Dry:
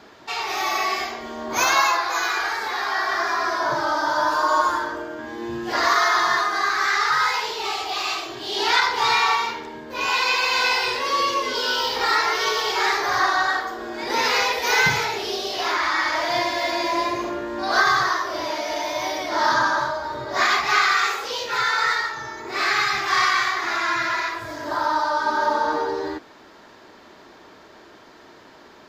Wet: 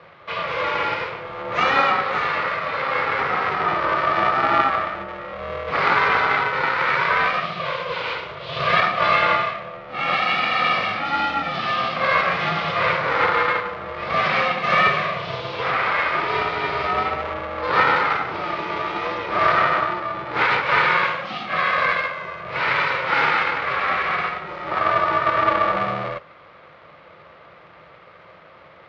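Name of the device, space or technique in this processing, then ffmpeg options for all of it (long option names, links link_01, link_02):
ring modulator pedal into a guitar cabinet: -filter_complex "[0:a]aeval=exprs='val(0)*sgn(sin(2*PI*270*n/s))':channel_layout=same,highpass=88,equalizer=frequency=160:width_type=q:width=4:gain=6,equalizer=frequency=240:width_type=q:width=4:gain=-4,equalizer=frequency=520:width_type=q:width=4:gain=9,equalizer=frequency=1200:width_type=q:width=4:gain=9,equalizer=frequency=2200:width_type=q:width=4:gain=6,lowpass=frequency=3600:width=0.5412,lowpass=frequency=3600:width=1.3066,asettb=1/sr,asplit=3[link_01][link_02][link_03];[link_01]atrim=end=3.544[link_04];[link_02]atrim=start=3.54:end=4.15,asetpts=PTS-STARTPTS,afade=type=in:duration=0.004:curve=qsin,afade=type=out:start_time=0.606:duration=0.004:curve=qsin,lowpass=frequency=7900:width=0.5412,lowpass=frequency=7900:width=1.3066[link_05];[link_03]atrim=start=4.146[link_06];[link_04][link_05]acrossfade=duration=0.004:curve1=hsin:curve2=qsin[link_07];[link_07][link_06]acrossfade=duration=0.004:curve1=qsin:curve2=hsin,volume=-3dB"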